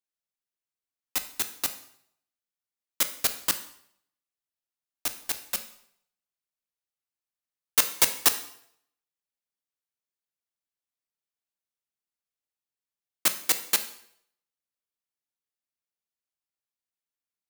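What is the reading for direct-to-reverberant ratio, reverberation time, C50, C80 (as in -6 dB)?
8.5 dB, 0.70 s, 12.5 dB, 15.5 dB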